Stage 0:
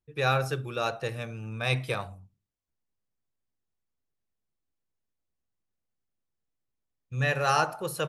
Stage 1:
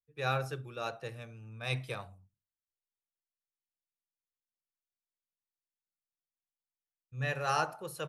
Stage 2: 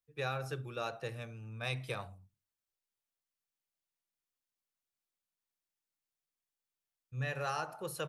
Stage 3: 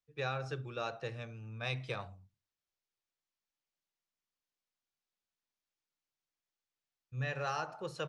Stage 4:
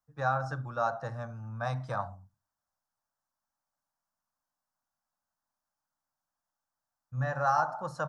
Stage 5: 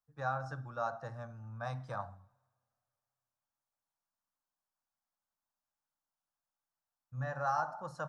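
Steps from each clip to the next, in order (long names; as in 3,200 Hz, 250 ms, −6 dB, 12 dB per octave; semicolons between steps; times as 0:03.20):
multiband upward and downward expander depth 40%; level −8 dB
downward compressor 6 to 1, threshold −35 dBFS, peak gain reduction 9.5 dB; level +2 dB
low-pass filter 6,700 Hz 24 dB per octave
drawn EQ curve 280 Hz 0 dB, 400 Hz −17 dB, 590 Hz +3 dB, 870 Hz +8 dB, 1,600 Hz +2 dB, 2,400 Hz −21 dB, 3,600 Hz −15 dB, 5,300 Hz −4 dB; level +5.5 dB
coupled-rooms reverb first 0.79 s, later 2.5 s, DRR 19.5 dB; level −6.5 dB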